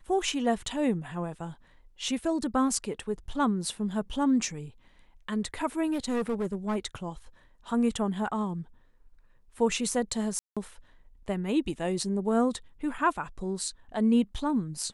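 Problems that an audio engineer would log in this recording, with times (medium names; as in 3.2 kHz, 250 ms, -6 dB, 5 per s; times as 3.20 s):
5.92–6.77 s: clipped -25 dBFS
10.39–10.57 s: dropout 176 ms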